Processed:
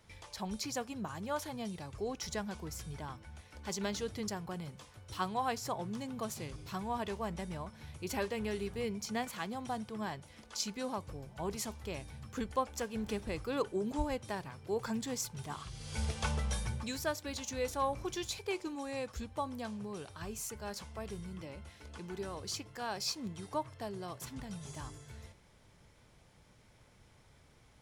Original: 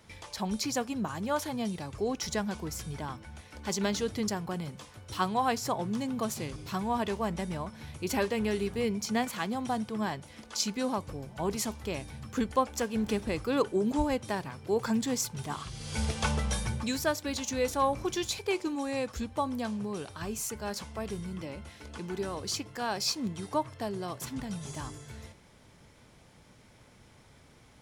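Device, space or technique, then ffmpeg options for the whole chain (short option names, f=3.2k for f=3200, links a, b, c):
low shelf boost with a cut just above: -af "lowshelf=f=61:g=6.5,equalizer=f=250:t=o:w=0.74:g=-3.5,volume=-6dB"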